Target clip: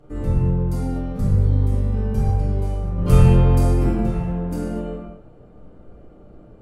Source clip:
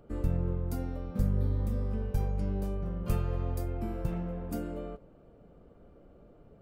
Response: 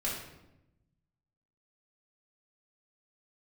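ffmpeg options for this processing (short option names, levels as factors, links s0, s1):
-filter_complex "[0:a]asettb=1/sr,asplit=3[s0][s1][s2];[s0]atrim=end=2.984[s3];[s1]atrim=start=2.98:end=3.89,asetpts=PTS-STARTPTS,afade=t=in:d=0.004:c=qsin,afade=t=out:st=0.906:d=0.004:c=qsin,acontrast=89[s4];[s2]atrim=start=3.886[s5];[s3][s4]acrossfade=d=0.004:c1=hsin:c2=qsin[s6];[s6][s5]acrossfade=d=0.004:c1=qsin:c2=hsin[s7];[1:a]atrim=start_sample=2205,atrim=end_sample=6174,asetrate=23814,aresample=44100[s8];[s7][s8]afir=irnorm=-1:irlink=0"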